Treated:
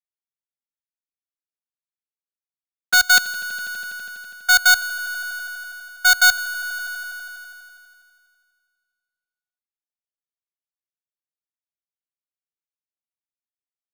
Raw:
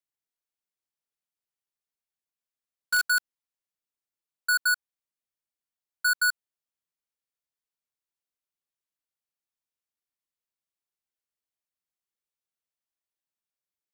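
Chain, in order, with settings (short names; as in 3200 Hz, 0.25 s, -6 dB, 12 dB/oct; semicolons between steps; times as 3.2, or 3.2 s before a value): on a send: swelling echo 82 ms, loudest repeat 5, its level -17 dB; on the sum: dynamic EQ 5200 Hz, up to +6 dB, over -40 dBFS, Q 0.93; in parallel at +1 dB: compressor, threshold -36 dBFS, peak gain reduction 15.5 dB; on the sum: sample-and-hold 4×; notch 960 Hz, Q 5.1; three-band expander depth 70%; gain +2 dB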